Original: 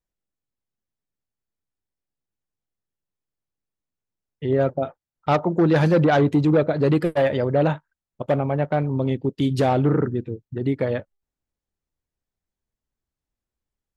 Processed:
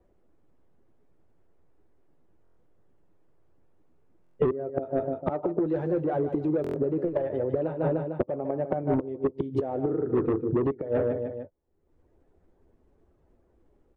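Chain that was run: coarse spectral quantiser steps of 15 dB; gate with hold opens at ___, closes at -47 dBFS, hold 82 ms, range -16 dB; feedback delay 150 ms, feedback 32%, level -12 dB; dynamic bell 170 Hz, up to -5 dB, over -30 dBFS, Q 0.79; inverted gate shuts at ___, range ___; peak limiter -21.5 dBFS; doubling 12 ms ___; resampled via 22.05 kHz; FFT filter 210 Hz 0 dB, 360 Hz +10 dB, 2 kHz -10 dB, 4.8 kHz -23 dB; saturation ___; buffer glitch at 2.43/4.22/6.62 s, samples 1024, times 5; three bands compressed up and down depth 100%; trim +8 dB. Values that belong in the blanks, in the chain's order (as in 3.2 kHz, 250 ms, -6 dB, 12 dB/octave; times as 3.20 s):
-46 dBFS, -16 dBFS, -24 dB, -13.5 dB, -24 dBFS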